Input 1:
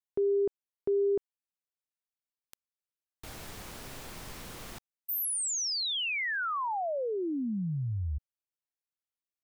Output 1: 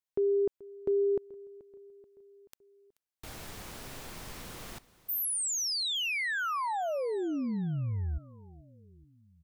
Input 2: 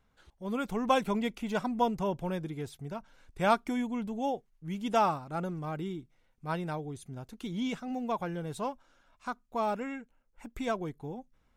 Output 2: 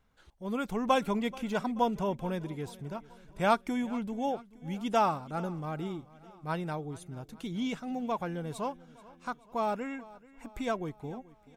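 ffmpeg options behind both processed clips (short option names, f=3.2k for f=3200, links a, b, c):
-af "aecho=1:1:432|864|1296|1728:0.0944|0.0529|0.0296|0.0166"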